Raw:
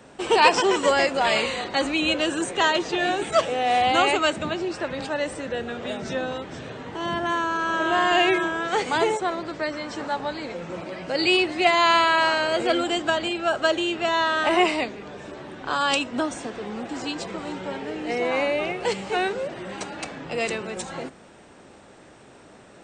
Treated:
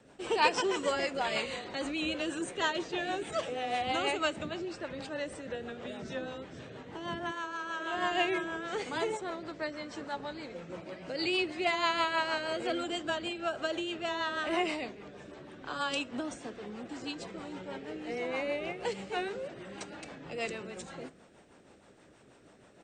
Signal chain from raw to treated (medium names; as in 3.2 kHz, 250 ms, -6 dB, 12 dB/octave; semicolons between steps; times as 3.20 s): speakerphone echo 270 ms, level -27 dB; rotary cabinet horn 6.3 Hz; 7.31–7.94 s: bass shelf 360 Hz -12 dB; on a send at -21 dB: reverberation RT60 0.50 s, pre-delay 6 ms; on the sum: trim -8 dB